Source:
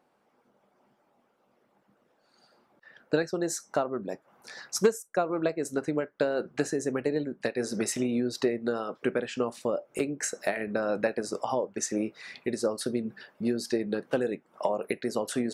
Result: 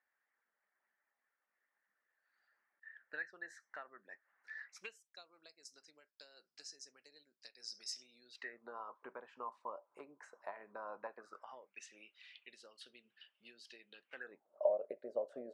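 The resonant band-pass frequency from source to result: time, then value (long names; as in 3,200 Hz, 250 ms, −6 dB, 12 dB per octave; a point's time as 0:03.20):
resonant band-pass, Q 8.7
0:04.61 1,800 Hz
0:05.33 5,100 Hz
0:08.18 5,100 Hz
0:08.63 1,000 Hz
0:11.11 1,000 Hz
0:11.89 3,000 Hz
0:14.04 3,000 Hz
0:14.49 590 Hz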